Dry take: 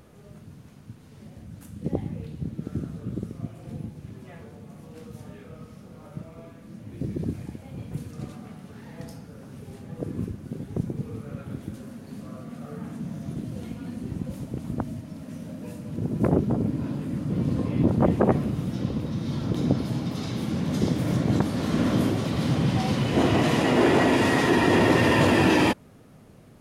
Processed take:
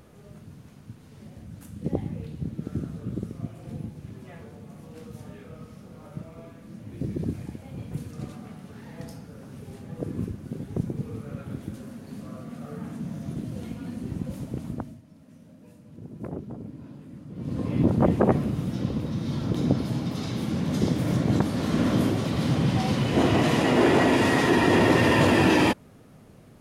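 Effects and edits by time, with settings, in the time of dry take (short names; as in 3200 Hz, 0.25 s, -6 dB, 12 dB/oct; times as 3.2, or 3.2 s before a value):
14.6–17.74 dip -13.5 dB, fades 0.39 s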